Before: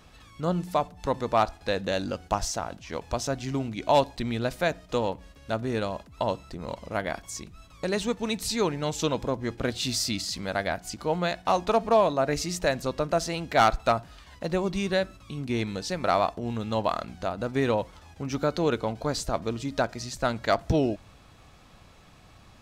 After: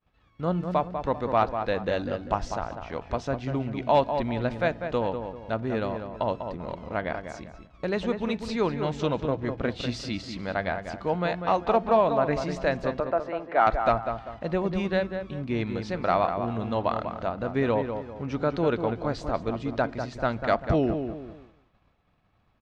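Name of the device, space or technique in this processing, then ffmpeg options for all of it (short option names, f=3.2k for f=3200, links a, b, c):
hearing-loss simulation: -filter_complex "[0:a]asettb=1/sr,asplit=3[a][b][c];[a]atrim=end=13.004[d];[b]atrim=start=13:end=13.67,asetpts=PTS-STARTPTS,afade=t=in:d=0.004:c=qsin,afade=t=out:st=0.666:d=0.004:c=qsin,acrossover=split=290 2100:gain=0.0794 1 0.141[e][f][g];[e][f][g]amix=inputs=3:normalize=0[h];[c]atrim=start=13.666[i];[d][h]acrossfade=d=0.004:c1=hsin:c2=qsin[j];[j][i]acrossfade=d=0.004:c1=qsin:c2=hsin,lowpass=2.8k,asplit=2[k][l];[l]adelay=196,lowpass=f=2k:p=1,volume=-7dB,asplit=2[m][n];[n]adelay=196,lowpass=f=2k:p=1,volume=0.37,asplit=2[o][p];[p]adelay=196,lowpass=f=2k:p=1,volume=0.37,asplit=2[q][r];[r]adelay=196,lowpass=f=2k:p=1,volume=0.37[s];[k][m][o][q][s]amix=inputs=5:normalize=0,agate=range=-33dB:threshold=-42dB:ratio=3:detection=peak"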